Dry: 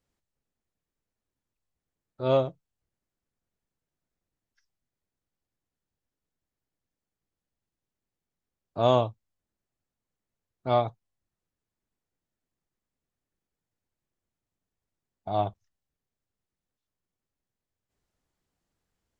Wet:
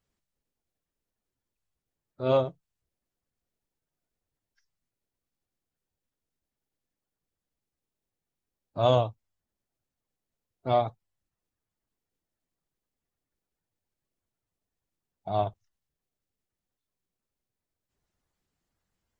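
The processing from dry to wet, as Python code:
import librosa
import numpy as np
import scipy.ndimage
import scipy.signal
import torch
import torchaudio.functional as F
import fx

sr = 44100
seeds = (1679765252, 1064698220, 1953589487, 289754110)

y = fx.spec_quant(x, sr, step_db=15)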